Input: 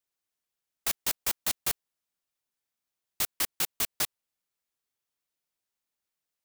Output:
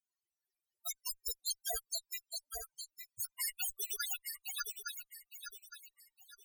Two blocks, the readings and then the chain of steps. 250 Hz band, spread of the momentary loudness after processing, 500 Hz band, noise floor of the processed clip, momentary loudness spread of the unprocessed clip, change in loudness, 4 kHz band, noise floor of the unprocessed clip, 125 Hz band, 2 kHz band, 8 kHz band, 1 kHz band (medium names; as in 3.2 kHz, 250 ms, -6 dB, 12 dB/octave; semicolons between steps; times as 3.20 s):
under -25 dB, 14 LU, -6.0 dB, under -85 dBFS, 3 LU, -9.5 dB, -5.5 dB, under -85 dBFS, under -15 dB, -6.5 dB, -5.5 dB, -7.0 dB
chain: backward echo that repeats 431 ms, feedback 57%, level -1 dB; Chebyshev shaper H 4 -41 dB, 5 -7 dB, 6 -43 dB, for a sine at -10 dBFS; loudest bins only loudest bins 8; trim -1.5 dB